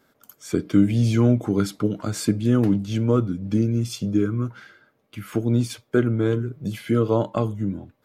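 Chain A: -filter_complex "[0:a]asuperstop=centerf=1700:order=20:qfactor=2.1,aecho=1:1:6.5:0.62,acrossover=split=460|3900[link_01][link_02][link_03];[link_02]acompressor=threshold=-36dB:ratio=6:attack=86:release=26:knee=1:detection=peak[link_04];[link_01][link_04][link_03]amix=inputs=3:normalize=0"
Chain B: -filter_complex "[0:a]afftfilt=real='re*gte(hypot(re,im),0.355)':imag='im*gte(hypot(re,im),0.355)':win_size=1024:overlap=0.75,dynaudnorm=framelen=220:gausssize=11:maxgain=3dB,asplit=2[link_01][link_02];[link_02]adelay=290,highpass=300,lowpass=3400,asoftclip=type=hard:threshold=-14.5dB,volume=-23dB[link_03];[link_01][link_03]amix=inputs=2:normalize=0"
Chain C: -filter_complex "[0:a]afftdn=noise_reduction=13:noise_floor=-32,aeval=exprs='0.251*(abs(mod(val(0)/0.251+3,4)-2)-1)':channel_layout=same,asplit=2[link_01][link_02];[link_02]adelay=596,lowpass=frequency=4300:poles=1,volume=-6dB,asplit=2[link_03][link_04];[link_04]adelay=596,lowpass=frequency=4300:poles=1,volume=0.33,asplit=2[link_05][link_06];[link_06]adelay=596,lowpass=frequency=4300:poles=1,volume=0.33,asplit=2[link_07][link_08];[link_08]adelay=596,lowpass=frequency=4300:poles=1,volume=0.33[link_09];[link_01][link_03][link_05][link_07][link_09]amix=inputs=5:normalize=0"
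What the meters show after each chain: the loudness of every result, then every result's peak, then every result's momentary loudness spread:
−22.0, −21.5, −23.0 LKFS; −5.0, −5.5, −8.5 dBFS; 9, 10, 8 LU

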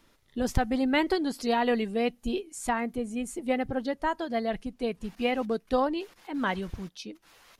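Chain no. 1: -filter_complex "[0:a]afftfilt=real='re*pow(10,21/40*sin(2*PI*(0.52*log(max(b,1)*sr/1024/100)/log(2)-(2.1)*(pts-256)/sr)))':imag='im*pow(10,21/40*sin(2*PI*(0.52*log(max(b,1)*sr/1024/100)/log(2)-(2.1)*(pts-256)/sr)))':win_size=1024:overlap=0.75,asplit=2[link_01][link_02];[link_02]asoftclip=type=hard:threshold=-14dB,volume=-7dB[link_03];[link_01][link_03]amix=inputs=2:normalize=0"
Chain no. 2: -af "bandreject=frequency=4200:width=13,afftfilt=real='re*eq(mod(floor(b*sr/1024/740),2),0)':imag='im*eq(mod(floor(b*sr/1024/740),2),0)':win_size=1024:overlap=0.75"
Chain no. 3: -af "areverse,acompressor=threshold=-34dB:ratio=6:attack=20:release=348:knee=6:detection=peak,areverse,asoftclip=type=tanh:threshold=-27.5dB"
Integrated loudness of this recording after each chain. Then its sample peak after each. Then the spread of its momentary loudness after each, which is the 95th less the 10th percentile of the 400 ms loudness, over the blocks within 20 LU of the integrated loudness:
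−21.5, −30.5, −39.0 LKFS; −3.5, −10.0, −28.0 dBFS; 11, 10, 5 LU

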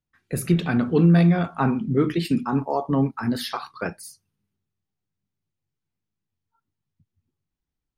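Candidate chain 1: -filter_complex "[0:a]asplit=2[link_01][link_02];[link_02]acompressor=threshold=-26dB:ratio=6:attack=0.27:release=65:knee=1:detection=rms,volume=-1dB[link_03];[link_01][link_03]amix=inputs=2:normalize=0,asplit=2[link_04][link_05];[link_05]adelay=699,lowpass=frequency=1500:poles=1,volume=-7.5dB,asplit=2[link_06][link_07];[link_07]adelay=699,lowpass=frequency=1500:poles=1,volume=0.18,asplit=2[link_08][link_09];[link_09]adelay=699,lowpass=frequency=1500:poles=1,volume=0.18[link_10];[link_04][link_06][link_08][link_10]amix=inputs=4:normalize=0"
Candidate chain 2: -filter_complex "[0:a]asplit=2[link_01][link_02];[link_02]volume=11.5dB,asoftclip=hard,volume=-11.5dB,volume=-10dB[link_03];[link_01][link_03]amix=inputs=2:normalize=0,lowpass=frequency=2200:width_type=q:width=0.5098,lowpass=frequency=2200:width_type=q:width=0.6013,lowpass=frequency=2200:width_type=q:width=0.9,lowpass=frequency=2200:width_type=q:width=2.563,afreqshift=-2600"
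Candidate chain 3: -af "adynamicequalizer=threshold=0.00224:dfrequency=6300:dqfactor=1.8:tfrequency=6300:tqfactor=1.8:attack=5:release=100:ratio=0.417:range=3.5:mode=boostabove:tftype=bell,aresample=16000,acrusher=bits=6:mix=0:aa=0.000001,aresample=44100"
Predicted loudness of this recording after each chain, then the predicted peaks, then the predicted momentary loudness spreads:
−20.0, −16.0, −22.0 LKFS; −5.5, −5.5, −7.5 dBFS; 19, 16, 15 LU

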